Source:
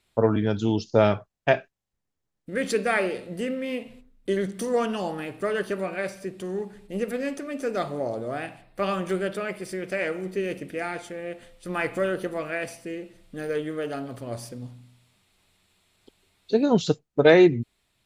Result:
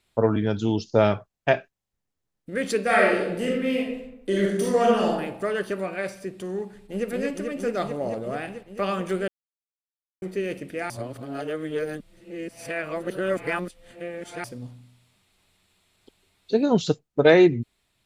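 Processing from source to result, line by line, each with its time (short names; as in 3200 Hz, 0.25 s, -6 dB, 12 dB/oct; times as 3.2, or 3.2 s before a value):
2.84–5.09 reverb throw, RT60 0.82 s, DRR -3.5 dB
6.67–7.08 echo throw 0.22 s, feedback 85%, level -3 dB
9.28–10.22 mute
10.9–14.44 reverse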